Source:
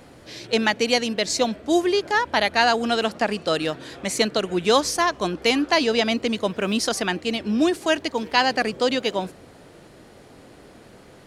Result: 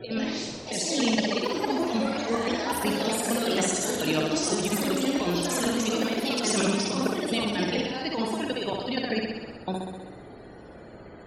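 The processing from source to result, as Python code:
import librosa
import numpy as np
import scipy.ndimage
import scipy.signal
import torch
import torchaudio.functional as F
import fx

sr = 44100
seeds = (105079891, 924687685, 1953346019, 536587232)

y = fx.block_reorder(x, sr, ms=236.0, group=3)
y = fx.high_shelf(y, sr, hz=5400.0, db=6.5)
y = fx.over_compress(y, sr, threshold_db=-25.0, ratio=-0.5)
y = fx.spec_topn(y, sr, count=64)
y = fx.room_flutter(y, sr, wall_m=10.9, rt60_s=1.2)
y = fx.echo_pitch(y, sr, ms=83, semitones=3, count=2, db_per_echo=-3.0)
y = y * 10.0 ** (-4.5 / 20.0)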